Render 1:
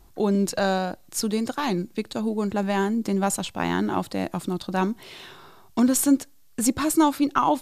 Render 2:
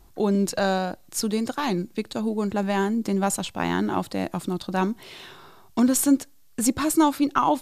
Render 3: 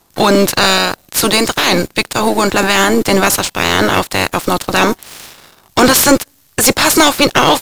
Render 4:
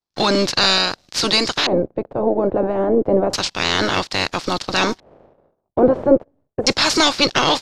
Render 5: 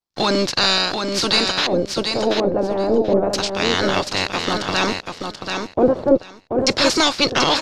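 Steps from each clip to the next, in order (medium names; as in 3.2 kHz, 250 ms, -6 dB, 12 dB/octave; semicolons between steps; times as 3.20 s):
no audible change
spectral peaks clipped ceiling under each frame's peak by 24 dB; waveshaping leveller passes 3; trim +3 dB
LFO low-pass square 0.3 Hz 570–5000 Hz; expander -37 dBFS; trim -7.5 dB
feedback delay 734 ms, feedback 16%, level -5.5 dB; trim -1.5 dB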